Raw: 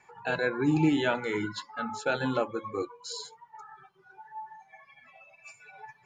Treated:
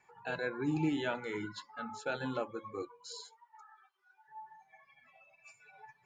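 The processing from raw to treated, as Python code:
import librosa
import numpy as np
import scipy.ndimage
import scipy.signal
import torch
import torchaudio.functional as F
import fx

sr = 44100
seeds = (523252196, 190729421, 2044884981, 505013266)

y = fx.highpass(x, sr, hz=fx.line((3.2, 560.0), (4.27, 1500.0)), slope=12, at=(3.2, 4.27), fade=0.02)
y = F.gain(torch.from_numpy(y), -8.0).numpy()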